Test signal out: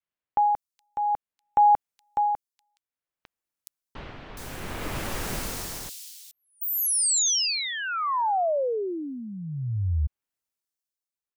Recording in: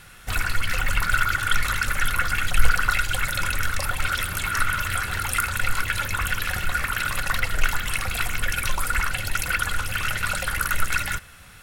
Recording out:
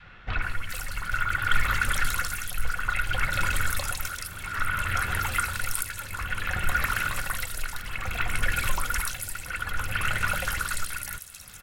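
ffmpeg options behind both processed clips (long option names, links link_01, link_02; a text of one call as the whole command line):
ffmpeg -i in.wav -filter_complex "[0:a]adynamicequalizer=threshold=0.0224:dfrequency=340:dqfactor=0.75:tfrequency=340:tqfactor=0.75:attack=5:release=100:ratio=0.375:range=2:mode=cutabove:tftype=bell,tremolo=f=0.59:d=0.73,acrossover=split=3600[link_01][link_02];[link_02]adelay=420[link_03];[link_01][link_03]amix=inputs=2:normalize=0" out.wav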